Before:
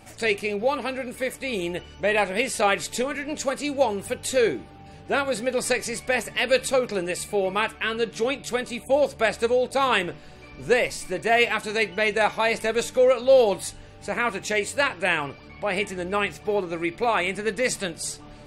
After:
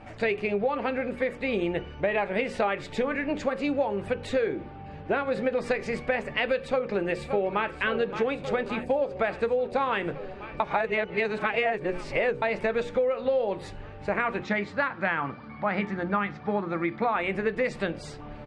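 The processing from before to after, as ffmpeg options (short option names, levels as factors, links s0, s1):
-filter_complex "[0:a]asplit=2[s0][s1];[s1]afade=t=in:st=6.58:d=0.01,afade=t=out:st=7.68:d=0.01,aecho=0:1:570|1140|1710|2280|2850|3420|3990|4560|5130|5700|6270|6840:0.199526|0.159621|0.127697|0.102157|0.0817259|0.0653808|0.0523046|0.0418437|0.0334749|0.02678|0.021424|0.0171392[s2];[s0][s2]amix=inputs=2:normalize=0,asettb=1/sr,asplit=3[s3][s4][s5];[s3]atrim=end=14.434[s6];[s4]atrim=start=14.43:end=17.16,asetpts=PTS-STARTPTS,afade=t=in:d=0.004:c=qsin,afade=t=out:st=2.726:d=0.004:c=qsin,highpass=120,equalizer=f=210:t=q:w=4:g=6,equalizer=f=400:t=q:w=4:g=-9,equalizer=f=590:t=q:w=4:g=-5,equalizer=f=1300:t=q:w=4:g=5,equalizer=f=2700:t=q:w=4:g=-9,lowpass=f=5900:w=0.5412,lowpass=f=5900:w=1.3066[s7];[s5]atrim=start=17.156[s8];[s6][s7]acrossfade=d=0.004:c1=hsin:c2=qsin[s9];[s9][s8]acrossfade=d=0.004:c1=qsin:c2=hsin,asplit=3[s10][s11][s12];[s10]atrim=end=10.602[s13];[s11]atrim=start=10.598:end=12.422,asetpts=PTS-STARTPTS,areverse[s14];[s12]atrim=start=12.418[s15];[s13][s14]acrossfade=d=0.004:c1=hsin:c2=hsin[s16];[s16][s15]acrossfade=d=0.004:c1=hsin:c2=hsin,lowpass=2100,bandreject=f=60:t=h:w=6,bandreject=f=120:t=h:w=6,bandreject=f=180:t=h:w=6,bandreject=f=240:t=h:w=6,bandreject=f=300:t=h:w=6,bandreject=f=360:t=h:w=6,bandreject=f=420:t=h:w=6,bandreject=f=480:t=h:w=6,bandreject=f=540:t=h:w=6,acompressor=threshold=0.0501:ratio=12,volume=1.58"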